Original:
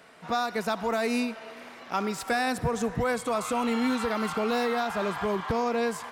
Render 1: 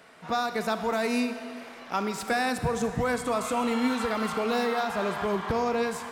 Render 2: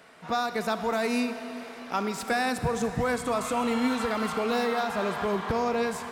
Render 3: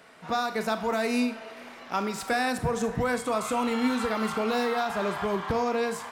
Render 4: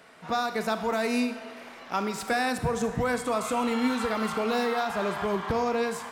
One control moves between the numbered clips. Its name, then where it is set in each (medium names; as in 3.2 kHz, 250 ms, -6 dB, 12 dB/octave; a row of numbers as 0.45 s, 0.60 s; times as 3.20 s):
Schroeder reverb, RT60: 1.9 s, 4.3 s, 0.31 s, 0.79 s